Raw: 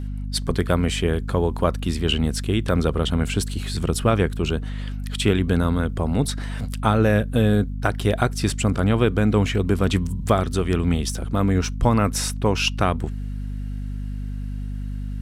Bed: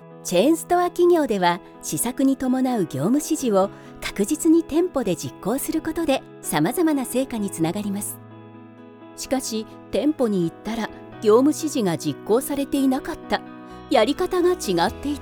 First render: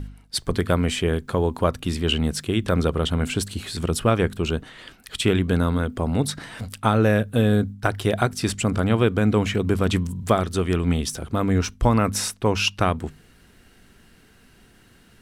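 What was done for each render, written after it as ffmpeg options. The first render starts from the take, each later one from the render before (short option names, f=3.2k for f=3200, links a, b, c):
-af "bandreject=f=50:t=h:w=4,bandreject=f=100:t=h:w=4,bandreject=f=150:t=h:w=4,bandreject=f=200:t=h:w=4,bandreject=f=250:t=h:w=4"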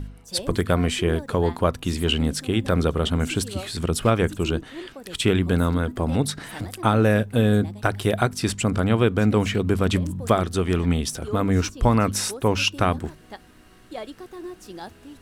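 -filter_complex "[1:a]volume=-17.5dB[a];[0:a][a]amix=inputs=2:normalize=0"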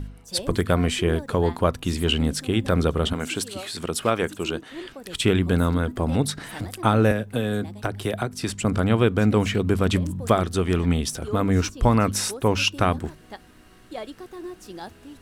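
-filter_complex "[0:a]asettb=1/sr,asplit=3[a][b][c];[a]atrim=end=3.134[d];[b]atrim=start=3.13:end=4.71,asetpts=PTS-STARTPTS,afade=t=in:d=0.004:c=qsin,afade=t=out:st=1.576:d=0.004:c=qsin,highpass=f=350:p=1[e];[c]atrim=start=4.706[f];[d][e]acrossfade=d=0.004:c1=hsin:c2=qsin[g];[g][f]acrossfade=d=0.004:c1=qsin:c2=hsin,asettb=1/sr,asplit=3[h][i][j];[h]atrim=end=7.114[k];[i]atrim=start=7.11:end=8.65,asetpts=PTS-STARTPTS,afade=t=in:d=0.004:c=qsin,afade=t=out:st=1.536:d=0.004:c=qsin,acrossover=split=190|540[l][m][n];[l]acompressor=threshold=-31dB:ratio=4[o];[m]acompressor=threshold=-27dB:ratio=4[p];[n]acompressor=threshold=-29dB:ratio=4[q];[o][p][q]amix=inputs=3:normalize=0[r];[j]atrim=start=8.646[s];[k][r]acrossfade=d=0.004:c1=hsin:c2=qsin[t];[t][s]acrossfade=d=0.004:c1=qsin:c2=hsin"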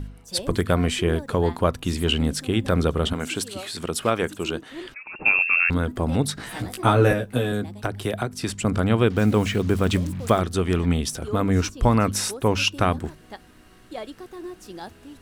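-filter_complex "[0:a]asettb=1/sr,asplit=3[a][b][c];[a]atrim=end=4.944[d];[b]atrim=start=4.94:end=5.7,asetpts=PTS-STARTPTS,afade=t=in:d=0.004:c=qsin,afade=t=out:st=0.756:d=0.004:c=qsin,lowpass=f=2.4k:t=q:w=0.5098,lowpass=f=2.4k:t=q:w=0.6013,lowpass=f=2.4k:t=q:w=0.9,lowpass=f=2.4k:t=q:w=2.563,afreqshift=-2800[e];[c]atrim=start=5.696[f];[d][e]acrossfade=d=0.004:c1=hsin:c2=qsin[g];[g][f]acrossfade=d=0.004:c1=qsin:c2=hsin,asettb=1/sr,asplit=3[h][i][j];[h]atrim=end=6.354[k];[i]atrim=start=6.35:end=7.52,asetpts=PTS-STARTPTS,afade=t=in:d=0.004:c=qsin,afade=t=out:st=1.166:d=0.004:c=qsin,asplit=2[l][m];[m]adelay=16,volume=-2.5dB[n];[l][n]amix=inputs=2:normalize=0,atrim=end_sample=51597[o];[j]atrim=start=7.516[p];[k][o]acrossfade=d=0.004:c1=hsin:c2=qsin[q];[q][p]acrossfade=d=0.004:c1=qsin:c2=hsin,asettb=1/sr,asplit=3[r][s][t];[r]atrim=end=9.104[u];[s]atrim=start=9.1:end=10.4,asetpts=PTS-STARTPTS,afade=t=in:d=0.004:c=qsin,afade=t=out:st=1.296:d=0.004:c=qsin,acrusher=bits=6:mix=0:aa=0.5[v];[t]atrim=start=10.396[w];[u][v]acrossfade=d=0.004:c1=hsin:c2=qsin[x];[x][w]acrossfade=d=0.004:c1=qsin:c2=hsin"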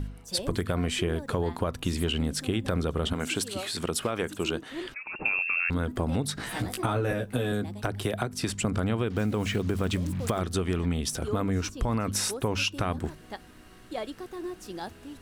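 -af "alimiter=limit=-11.5dB:level=0:latency=1:release=34,acompressor=threshold=-24dB:ratio=6"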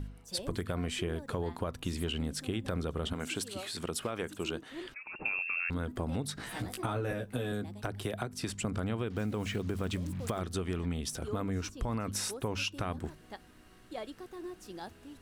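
-af "volume=-6.5dB"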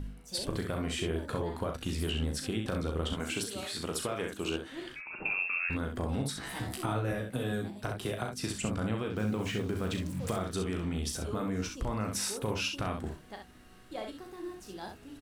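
-filter_complex "[0:a]asplit=2[a][b];[b]adelay=15,volume=-12dB[c];[a][c]amix=inputs=2:normalize=0,aecho=1:1:37|65:0.447|0.501"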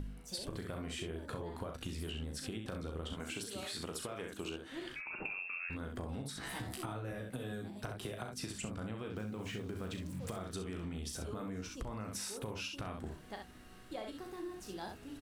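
-af "acompressor=threshold=-39dB:ratio=6"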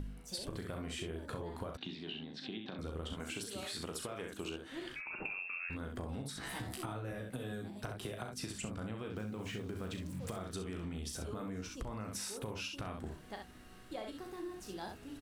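-filter_complex "[0:a]asettb=1/sr,asplit=3[a][b][c];[a]atrim=end=1.774[d];[b]atrim=start=1.77:end=2.79,asetpts=PTS-STARTPTS,afade=t=in:d=0.004:c=qsin,afade=t=out:st=1.016:d=0.004:c=qsin,highpass=f=160:w=0.5412,highpass=f=160:w=1.3066,equalizer=f=510:t=q:w=4:g=-9,equalizer=f=780:t=q:w=4:g=3,equalizer=f=1.3k:t=q:w=4:g=-7,equalizer=f=3.8k:t=q:w=4:g=9,lowpass=f=4.2k:w=0.5412,lowpass=f=4.2k:w=1.3066[e];[c]atrim=start=2.786[f];[d][e]acrossfade=d=0.004:c1=hsin:c2=qsin[g];[g][f]acrossfade=d=0.004:c1=qsin:c2=hsin"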